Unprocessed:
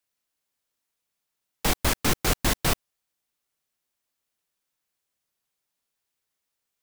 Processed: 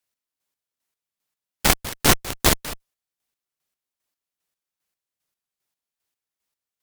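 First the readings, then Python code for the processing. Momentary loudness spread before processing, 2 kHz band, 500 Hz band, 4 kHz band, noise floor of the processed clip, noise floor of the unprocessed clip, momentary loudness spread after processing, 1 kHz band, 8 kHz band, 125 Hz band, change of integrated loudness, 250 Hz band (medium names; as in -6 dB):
5 LU, +5.0 dB, +4.0 dB, +5.5 dB, under -85 dBFS, -83 dBFS, 12 LU, +4.5 dB, +6.0 dB, +2.0 dB, +5.5 dB, +3.0 dB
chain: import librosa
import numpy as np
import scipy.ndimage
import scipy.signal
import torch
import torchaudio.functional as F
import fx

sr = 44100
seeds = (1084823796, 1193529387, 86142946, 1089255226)

y = fx.chopper(x, sr, hz=2.5, depth_pct=60, duty_pct=35)
y = fx.cheby_harmonics(y, sr, harmonics=(5, 7, 8), levels_db=(-32, -13, -21), full_scale_db=-8.5)
y = F.gain(torch.from_numpy(y), 7.5).numpy()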